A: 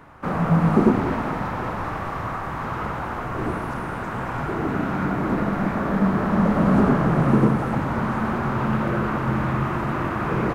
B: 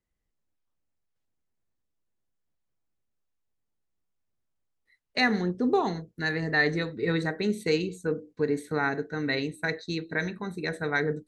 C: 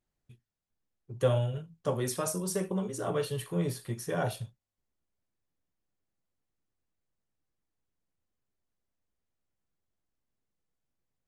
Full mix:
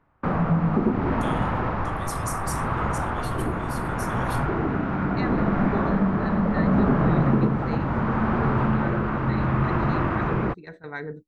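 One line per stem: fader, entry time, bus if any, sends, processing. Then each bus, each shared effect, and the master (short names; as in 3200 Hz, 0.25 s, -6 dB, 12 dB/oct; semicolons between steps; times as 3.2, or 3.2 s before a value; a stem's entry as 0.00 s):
+2.0 dB, 0.00 s, bus A, no send, dry
-6.5 dB, 0.00 s, bus A, no send, bell 970 Hz +5.5 dB 0.42 oct
+3.0 dB, 0.00 s, no bus, no send, passive tone stack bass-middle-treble 10-0-10
bus A: 0.0 dB, Gaussian blur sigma 1.9 samples; compressor 2:1, threshold -20 dBFS, peak gain reduction 7 dB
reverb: off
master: low shelf 90 Hz +7.5 dB; tremolo 0.71 Hz, depth 30%; gate with hold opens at -28 dBFS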